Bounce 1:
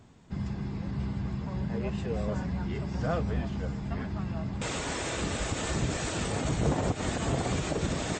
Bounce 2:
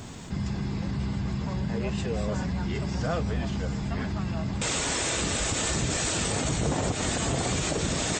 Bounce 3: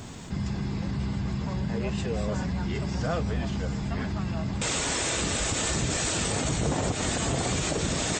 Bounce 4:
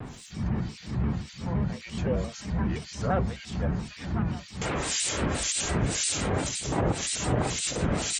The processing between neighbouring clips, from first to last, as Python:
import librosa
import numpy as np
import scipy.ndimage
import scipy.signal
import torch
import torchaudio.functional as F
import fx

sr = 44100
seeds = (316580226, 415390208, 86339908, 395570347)

y1 = fx.high_shelf(x, sr, hz=3200.0, db=9.5)
y1 = fx.env_flatten(y1, sr, amount_pct=50)
y1 = y1 * librosa.db_to_amplitude(-1.5)
y2 = y1
y3 = fx.harmonic_tremolo(y2, sr, hz=1.9, depth_pct=100, crossover_hz=2200.0)
y3 = fx.vibrato_shape(y3, sr, shape='square', rate_hz=5.8, depth_cents=160.0)
y3 = y3 * librosa.db_to_amplitude(3.5)